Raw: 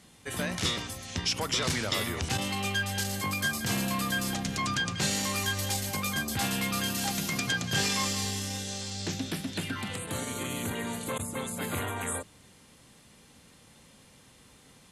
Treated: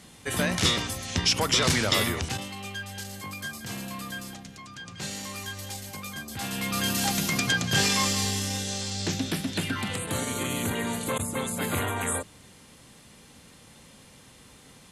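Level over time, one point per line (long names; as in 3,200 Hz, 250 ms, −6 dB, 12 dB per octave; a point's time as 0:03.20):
0:02.07 +6 dB
0:02.50 −6.5 dB
0:04.16 −6.5 dB
0:04.69 −15 dB
0:05.03 −6.5 dB
0:06.28 −6.5 dB
0:06.90 +4.5 dB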